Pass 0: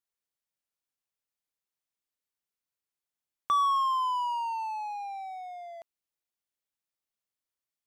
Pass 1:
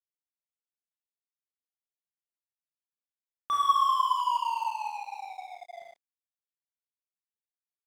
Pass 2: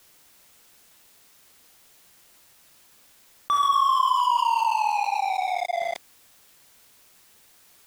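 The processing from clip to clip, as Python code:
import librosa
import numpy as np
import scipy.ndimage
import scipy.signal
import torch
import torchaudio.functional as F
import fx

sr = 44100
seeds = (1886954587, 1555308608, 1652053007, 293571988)

y1 = fx.rev_schroeder(x, sr, rt60_s=1.6, comb_ms=25, drr_db=-3.5)
y1 = fx.dynamic_eq(y1, sr, hz=2000.0, q=1.2, threshold_db=-39.0, ratio=4.0, max_db=5)
y1 = np.sign(y1) * np.maximum(np.abs(y1) - 10.0 ** (-39.0 / 20.0), 0.0)
y1 = y1 * 10.0 ** (-3.5 / 20.0)
y2 = fx.env_flatten(y1, sr, amount_pct=70)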